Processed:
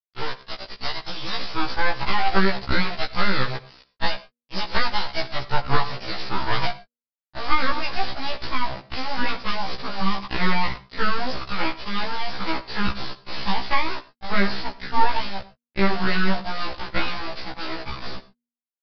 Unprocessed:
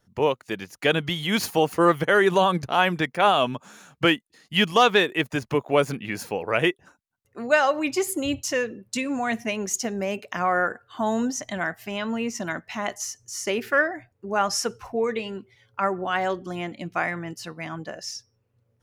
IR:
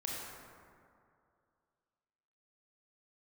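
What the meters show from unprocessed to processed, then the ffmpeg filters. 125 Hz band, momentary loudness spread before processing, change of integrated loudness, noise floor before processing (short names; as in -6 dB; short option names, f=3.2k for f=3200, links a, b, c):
+1.5 dB, 14 LU, -2.0 dB, -71 dBFS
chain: -filter_complex "[0:a]aemphasis=mode=production:type=riaa,acrossover=split=160[a][b];[b]acompressor=threshold=-21dB:ratio=10[c];[a][c]amix=inputs=2:normalize=0,lowshelf=f=370:g=10.5,acrossover=split=320|1100[d][e][f];[d]aeval=exprs='(mod(42.2*val(0)+1,2)-1)/42.2':c=same[g];[e]dynaudnorm=f=340:g=9:m=12dB[h];[g][h][f]amix=inputs=3:normalize=0,aeval=exprs='abs(val(0))':c=same,acrusher=bits=4:mix=0:aa=0.000001,aexciter=amount=1.5:drive=7:freq=4.3k,bandreject=f=239.2:t=h:w=4,bandreject=f=478.4:t=h:w=4,asplit=2[i][j];[1:a]atrim=start_sample=2205,atrim=end_sample=3087,asetrate=23814,aresample=44100[k];[j][k]afir=irnorm=-1:irlink=0,volume=-15dB[l];[i][l]amix=inputs=2:normalize=0,aresample=11025,aresample=44100,afftfilt=real='re*1.73*eq(mod(b,3),0)':imag='im*1.73*eq(mod(b,3),0)':win_size=2048:overlap=0.75,volume=-1.5dB"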